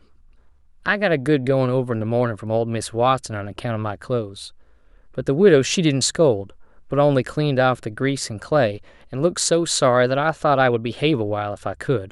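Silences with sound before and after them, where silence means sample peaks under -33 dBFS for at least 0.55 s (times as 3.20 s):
4.48–5.18 s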